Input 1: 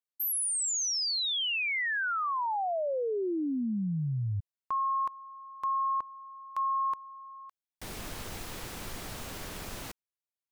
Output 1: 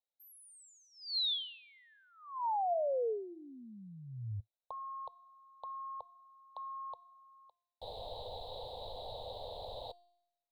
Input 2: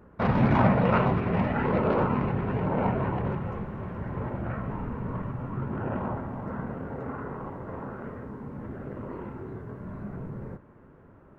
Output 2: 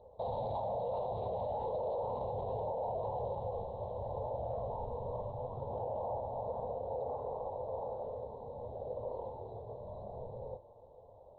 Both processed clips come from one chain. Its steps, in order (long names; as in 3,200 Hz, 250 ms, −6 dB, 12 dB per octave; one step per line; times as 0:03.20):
drawn EQ curve 110 Hz 0 dB, 150 Hz −11 dB, 340 Hz −13 dB, 500 Hz +14 dB, 890 Hz +10 dB, 1,400 Hz −29 dB, 2,500 Hz −22 dB, 3,900 Hz +14 dB, 5,700 Hz −30 dB, 8,100 Hz −20 dB
brickwall limiter −22 dBFS
tuned comb filter 350 Hz, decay 0.82 s, mix 60%